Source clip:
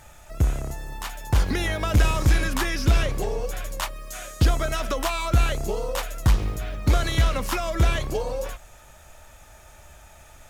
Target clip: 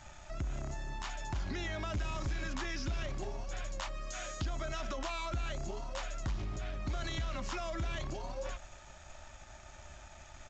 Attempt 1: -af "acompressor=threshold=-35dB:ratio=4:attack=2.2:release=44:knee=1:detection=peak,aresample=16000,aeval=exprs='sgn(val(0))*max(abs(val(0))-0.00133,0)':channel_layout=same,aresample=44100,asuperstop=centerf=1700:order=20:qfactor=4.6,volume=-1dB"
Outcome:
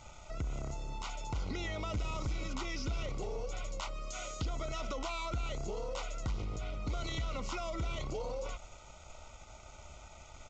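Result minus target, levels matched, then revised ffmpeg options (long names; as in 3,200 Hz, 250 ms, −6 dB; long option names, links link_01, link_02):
2,000 Hz band −2.5 dB
-af "acompressor=threshold=-35dB:ratio=4:attack=2.2:release=44:knee=1:detection=peak,aresample=16000,aeval=exprs='sgn(val(0))*max(abs(val(0))-0.00133,0)':channel_layout=same,aresample=44100,asuperstop=centerf=470:order=20:qfactor=4.6,volume=-1dB"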